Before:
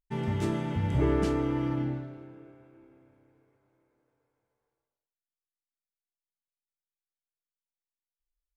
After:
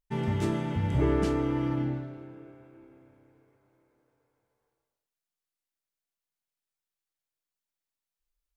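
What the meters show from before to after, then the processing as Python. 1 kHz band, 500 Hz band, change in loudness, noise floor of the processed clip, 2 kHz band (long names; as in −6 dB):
+0.5 dB, +0.5 dB, +0.5 dB, below −85 dBFS, +0.5 dB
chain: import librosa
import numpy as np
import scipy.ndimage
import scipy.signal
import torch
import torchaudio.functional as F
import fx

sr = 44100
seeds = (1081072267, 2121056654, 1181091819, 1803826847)

y = fx.rider(x, sr, range_db=10, speed_s=2.0)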